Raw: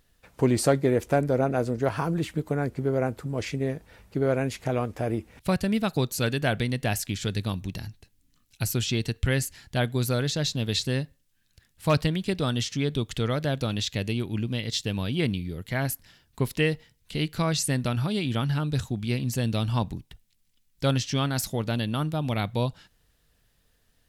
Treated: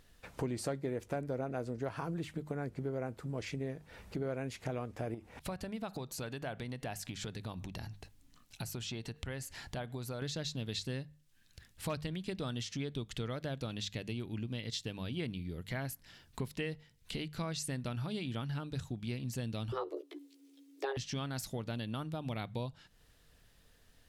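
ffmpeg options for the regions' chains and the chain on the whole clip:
-filter_complex "[0:a]asettb=1/sr,asplit=3[s0][s1][s2];[s0]atrim=end=5.144[s3];[s1]atrim=start=5.14:end=10.22,asetpts=PTS-STARTPTS,afade=t=in:d=0.004:c=qsin,afade=t=out:st=5.076:d=0.004:c=qsin,acompressor=threshold=0.0158:ratio=2.5:attack=3.2:release=140:knee=1:detection=peak,equalizer=f=830:w=1:g=7[s4];[s2]atrim=start=10.216[s5];[s3][s4]acrossfade=d=0.004:c1=hsin:c2=qsin[s6];[s6][s5]acrossfade=d=0.004:c1=qsin:c2=hsin,asettb=1/sr,asplit=3[s7][s8][s9];[s7]atrim=end=19.724[s10];[s8]atrim=start=19.72:end=20.97,asetpts=PTS-STARTPTS,afade=t=in:d=0.004:c=qsin,afade=t=out:st=1.246:d=0.004:c=qsin,acrossover=split=2700[s11][s12];[s12]acompressor=threshold=0.00251:ratio=4:attack=1:release=60[s13];[s11][s13]amix=inputs=2:normalize=0,afreqshift=270,asplit=2[s14][s15];[s15]adelay=14,volume=0.668[s16];[s14][s16]amix=inputs=2:normalize=0,atrim=end_sample=55125[s17];[s9]atrim=start=20.966[s18];[s10][s17]acrossfade=d=0.004:c1=hsin:c2=qsin[s19];[s19][s18]acrossfade=d=0.004:c1=qsin:c2=hsin,acompressor=threshold=0.00708:ratio=3,highshelf=f=12000:g=-7.5,bandreject=f=50:t=h:w=6,bandreject=f=100:t=h:w=6,bandreject=f=150:t=h:w=6,bandreject=f=200:t=h:w=6,volume=1.41"

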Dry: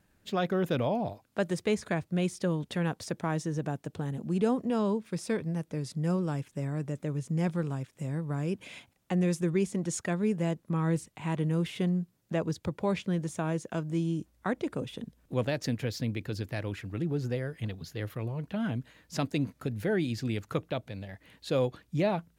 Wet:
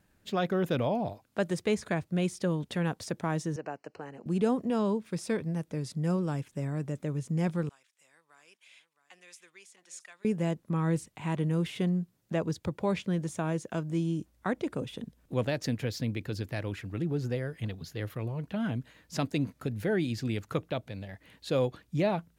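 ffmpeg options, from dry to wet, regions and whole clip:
-filter_complex "[0:a]asettb=1/sr,asplit=3[s0][s1][s2];[s0]atrim=end=3.564[s3];[s1]atrim=start=3.56:end=4.26,asetpts=PTS-STARTPTS,afade=t=in:d=0.004:c=qsin,afade=t=out:st=0.696:d=0.004:c=qsin,asuperstop=centerf=3500:order=8:qfactor=3.3,acrossover=split=350 5600:gain=0.112 1 0.1[s4][s5][s6];[s4][s5][s6]amix=inputs=3:normalize=0[s7];[s2]atrim=start=4.256[s8];[s3][s7]acrossfade=d=0.004:c1=hsin:c2=qsin[s9];[s9][s8]acrossfade=d=0.004:c1=qsin:c2=hsin,asettb=1/sr,asplit=3[s10][s11][s12];[s10]atrim=end=7.694[s13];[s11]atrim=start=7.69:end=10.25,asetpts=PTS-STARTPTS,afade=t=in:d=0.004:c=qsin,afade=t=out:st=2.556:d=0.004:c=qsin,bandpass=f=1500:t=q:w=0.56,aderivative,aecho=1:1:666:0.251,atrim=end_sample=112896[s14];[s12]atrim=start=10.246[s15];[s13][s14]acrossfade=d=0.004:c1=hsin:c2=qsin[s16];[s16][s15]acrossfade=d=0.004:c1=qsin:c2=hsin"

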